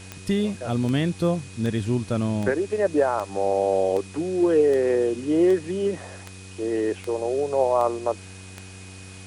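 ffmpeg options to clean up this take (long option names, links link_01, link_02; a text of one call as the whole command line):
ffmpeg -i in.wav -af "adeclick=threshold=4,bandreject=frequency=94.4:width_type=h:width=4,bandreject=frequency=188.8:width_type=h:width=4,bandreject=frequency=283.2:width_type=h:width=4,bandreject=frequency=377.6:width_type=h:width=4,bandreject=frequency=472:width_type=h:width=4,bandreject=frequency=2500:width=30,afwtdn=0.0056" out.wav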